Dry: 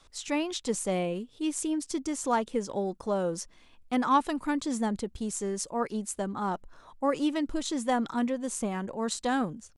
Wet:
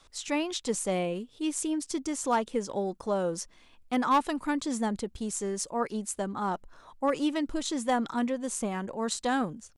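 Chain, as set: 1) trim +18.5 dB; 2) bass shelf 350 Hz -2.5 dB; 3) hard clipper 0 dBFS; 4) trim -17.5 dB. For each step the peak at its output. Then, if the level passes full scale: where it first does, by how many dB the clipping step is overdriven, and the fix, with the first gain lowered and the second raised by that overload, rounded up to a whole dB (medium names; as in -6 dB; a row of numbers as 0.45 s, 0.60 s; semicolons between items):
+6.0 dBFS, +5.5 dBFS, 0.0 dBFS, -17.5 dBFS; step 1, 5.5 dB; step 1 +12.5 dB, step 4 -11.5 dB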